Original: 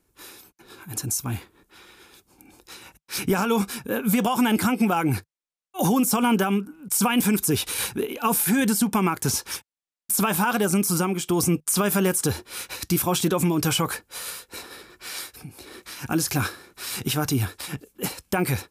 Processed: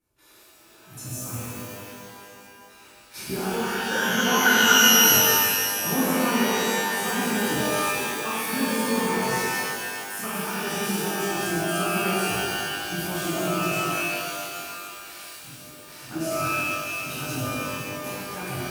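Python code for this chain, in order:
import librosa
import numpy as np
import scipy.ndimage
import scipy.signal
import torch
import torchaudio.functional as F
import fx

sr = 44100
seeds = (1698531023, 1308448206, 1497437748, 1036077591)

y = fx.lowpass_res(x, sr, hz=1500.0, q=16.0, at=(3.6, 4.94))
y = fx.level_steps(y, sr, step_db=10)
y = fx.rev_shimmer(y, sr, seeds[0], rt60_s=2.2, semitones=12, shimmer_db=-2, drr_db=-11.5)
y = y * 10.0 ** (-13.5 / 20.0)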